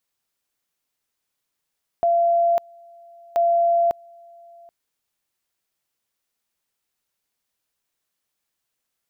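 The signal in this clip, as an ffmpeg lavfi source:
-f lavfi -i "aevalsrc='pow(10,(-15-28.5*gte(mod(t,1.33),0.55))/20)*sin(2*PI*684*t)':d=2.66:s=44100"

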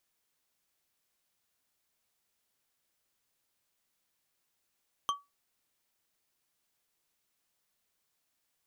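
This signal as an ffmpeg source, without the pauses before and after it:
-f lavfi -i "aevalsrc='0.0631*pow(10,-3*t/0.21)*sin(2*PI*1140*t)+0.0335*pow(10,-3*t/0.103)*sin(2*PI*3143*t)+0.0178*pow(10,-3*t/0.064)*sin(2*PI*6160.6*t)+0.00944*pow(10,-3*t/0.045)*sin(2*PI*10183.6*t)+0.00501*pow(10,-3*t/0.034)*sin(2*PI*15207.6*t)':d=0.89:s=44100"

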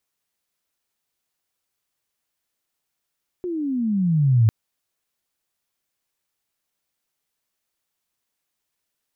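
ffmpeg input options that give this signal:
-f lavfi -i "aevalsrc='pow(10,(-11.5+13*(t/1.05-1))/20)*sin(2*PI*368*1.05/(-21.5*log(2)/12)*(exp(-21.5*log(2)/12*t/1.05)-1))':d=1.05:s=44100"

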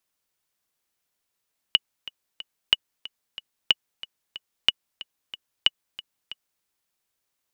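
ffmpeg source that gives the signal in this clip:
-f lavfi -i "aevalsrc='pow(10,(-3-19*gte(mod(t,3*60/184),60/184))/20)*sin(2*PI*2930*mod(t,60/184))*exp(-6.91*mod(t,60/184)/0.03)':d=4.89:s=44100"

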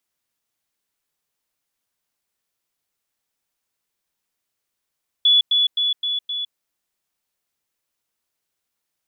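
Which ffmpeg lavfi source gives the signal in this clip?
-f lavfi -i "aevalsrc='pow(10,(-11-3*floor(t/0.26))/20)*sin(2*PI*3420*t)*clip(min(mod(t,0.26),0.16-mod(t,0.26))/0.005,0,1)':d=1.3:s=44100"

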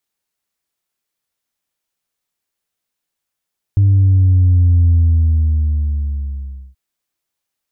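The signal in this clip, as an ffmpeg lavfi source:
-f lavfi -i "aevalsrc='0.398*clip((2.98-t)/1.86,0,1)*tanh(1.06*sin(2*PI*100*2.98/log(65/100)*(exp(log(65/100)*t/2.98)-1)))/tanh(1.06)':d=2.98:s=44100"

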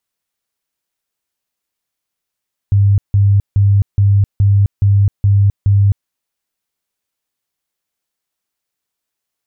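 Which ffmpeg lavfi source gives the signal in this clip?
-f lavfi -i "aevalsrc='0.447*sin(2*PI*100*mod(t,0.42))*lt(mod(t,0.42),26/100)':d=3.36:s=44100"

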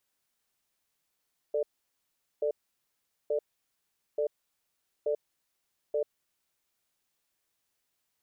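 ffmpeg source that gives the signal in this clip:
-f lavfi -i "aevalsrc='0.0376*(sin(2*PI*442*t)+sin(2*PI*592*t))*clip(min(mod(t,0.88),0.09-mod(t,0.88))/0.005,0,1)':d=5.22:s=44100"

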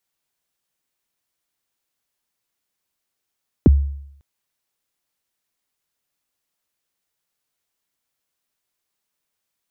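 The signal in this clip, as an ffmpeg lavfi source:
-f lavfi -i "aevalsrc='0.562*pow(10,-3*t/0.73)*sin(2*PI*(410*0.023/log(70/410)*(exp(log(70/410)*min(t,0.023)/0.023)-1)+70*max(t-0.023,0)))':d=0.55:s=44100"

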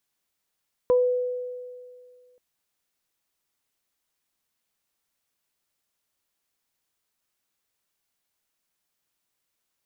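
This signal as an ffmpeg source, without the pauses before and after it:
-f lavfi -i "aevalsrc='0.178*pow(10,-3*t/2.1)*sin(2*PI*497*t)+0.0422*pow(10,-3*t/0.24)*sin(2*PI*994*t)':d=1.48:s=44100"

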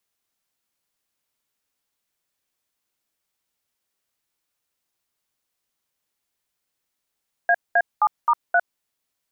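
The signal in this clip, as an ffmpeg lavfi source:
-f lavfi -i "aevalsrc='0.15*clip(min(mod(t,0.263),0.055-mod(t,0.263))/0.002,0,1)*(eq(floor(t/0.263),0)*(sin(2*PI*697*mod(t,0.263))+sin(2*PI*1633*mod(t,0.263)))+eq(floor(t/0.263),1)*(sin(2*PI*697*mod(t,0.263))+sin(2*PI*1633*mod(t,0.263)))+eq(floor(t/0.263),2)*(sin(2*PI*852*mod(t,0.263))+sin(2*PI*1209*mod(t,0.263)))+eq(floor(t/0.263),3)*(sin(2*PI*941*mod(t,0.263))+sin(2*PI*1209*mod(t,0.263)))+eq(floor(t/0.263),4)*(sin(2*PI*697*mod(t,0.263))+sin(2*PI*1477*mod(t,0.263))))':d=1.315:s=44100"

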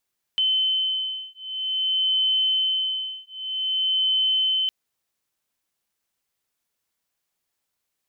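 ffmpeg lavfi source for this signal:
-f lavfi -i "aevalsrc='0.0631*(sin(2*PI*3060*t)+sin(2*PI*3060.52*t))':d=4.31:s=44100"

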